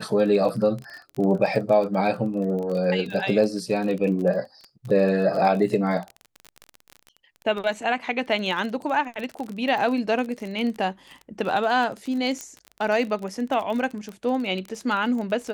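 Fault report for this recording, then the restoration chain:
surface crackle 28 per second −29 dBFS
0:12.41: click −18 dBFS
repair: click removal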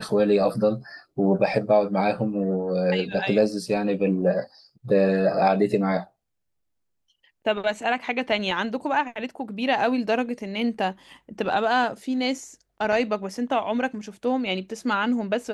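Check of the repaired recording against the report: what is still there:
none of them is left

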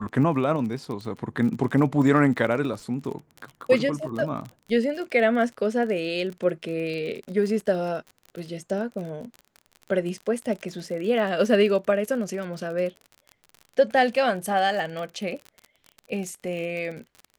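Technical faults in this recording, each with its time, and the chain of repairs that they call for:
surface crackle 36 per second −32 dBFS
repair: click removal

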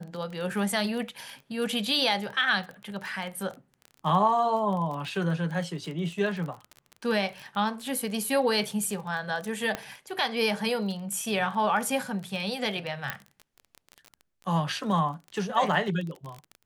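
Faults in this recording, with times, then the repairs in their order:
surface crackle 25 per second −33 dBFS
0:09.75: click −15 dBFS
0:13.10: click −14 dBFS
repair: click removal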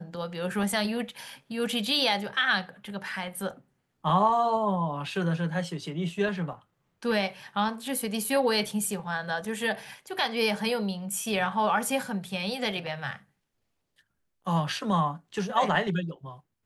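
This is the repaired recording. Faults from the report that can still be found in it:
0:09.75: click

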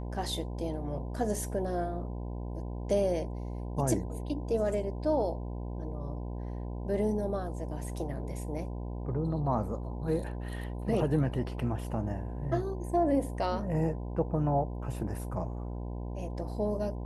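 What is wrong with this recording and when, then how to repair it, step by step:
mains buzz 60 Hz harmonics 17 −37 dBFS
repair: hum removal 60 Hz, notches 17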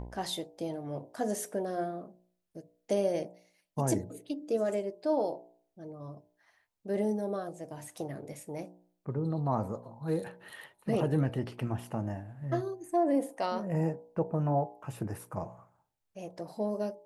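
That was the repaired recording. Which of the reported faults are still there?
none of them is left

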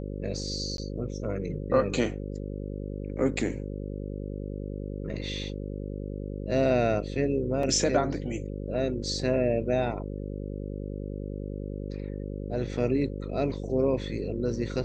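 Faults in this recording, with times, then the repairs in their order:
mains buzz 50 Hz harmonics 11 −35 dBFS
0:00.77–0:00.78: drop-out 12 ms
0:07.63: drop-out 3 ms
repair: hum removal 50 Hz, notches 11
repair the gap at 0:00.77, 12 ms
repair the gap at 0:07.63, 3 ms

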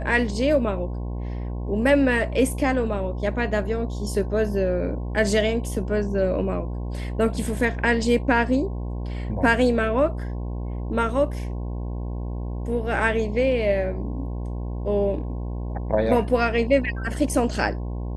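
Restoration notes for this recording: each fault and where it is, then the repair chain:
mains buzz 60 Hz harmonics 18 −29 dBFS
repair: hum removal 60 Hz, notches 18

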